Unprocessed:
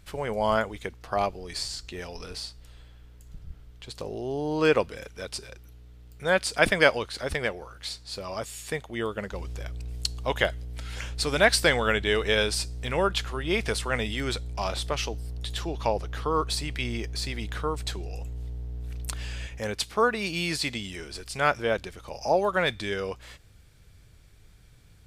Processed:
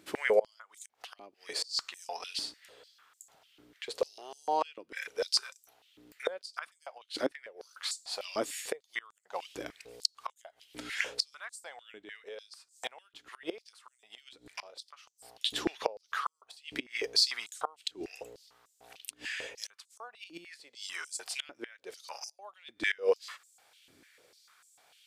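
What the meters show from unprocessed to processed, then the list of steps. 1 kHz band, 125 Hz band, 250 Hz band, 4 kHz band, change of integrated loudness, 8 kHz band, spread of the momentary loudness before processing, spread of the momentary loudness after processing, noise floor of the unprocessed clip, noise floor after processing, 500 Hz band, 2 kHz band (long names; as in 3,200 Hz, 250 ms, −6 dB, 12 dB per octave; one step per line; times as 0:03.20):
−10.0 dB, −29.0 dB, −12.5 dB, −4.0 dB, −7.5 dB, −6.0 dB, 14 LU, 20 LU, −53 dBFS, −74 dBFS, −9.5 dB, −10.5 dB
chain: gate with flip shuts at −19 dBFS, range −26 dB
high-pass on a step sequencer 6.7 Hz 300–7,400 Hz
level −1 dB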